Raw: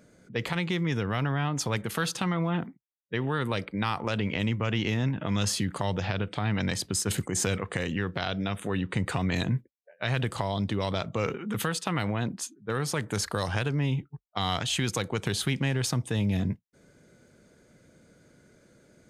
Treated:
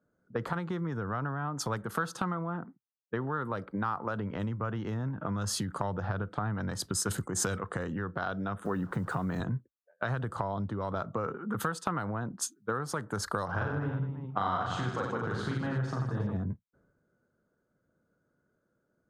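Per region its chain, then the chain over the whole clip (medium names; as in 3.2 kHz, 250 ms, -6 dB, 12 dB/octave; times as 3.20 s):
8.65–9.40 s: high-pass 95 Hz 24 dB/octave + peaking EQ 160 Hz +4.5 dB 0.32 oct + word length cut 8-bit, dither none
13.45–16.36 s: low-pass 4.3 kHz + hum notches 50/100/150/200/250/300/350/400/450 Hz + reverse bouncing-ball echo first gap 40 ms, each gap 1.3×, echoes 5, each echo -2 dB
whole clip: resonant high shelf 1.8 kHz -9 dB, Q 3; compression 5:1, threshold -34 dBFS; three bands expanded up and down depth 100%; trim +4 dB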